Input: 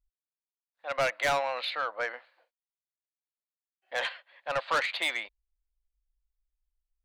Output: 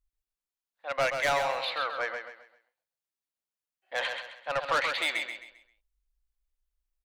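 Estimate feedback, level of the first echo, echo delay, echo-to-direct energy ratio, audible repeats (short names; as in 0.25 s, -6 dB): 33%, -6.5 dB, 0.132 s, -6.0 dB, 3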